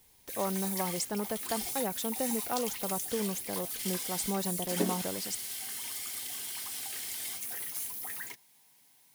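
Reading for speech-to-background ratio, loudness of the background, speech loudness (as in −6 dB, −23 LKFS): −1.0 dB, −35.0 LKFS, −36.0 LKFS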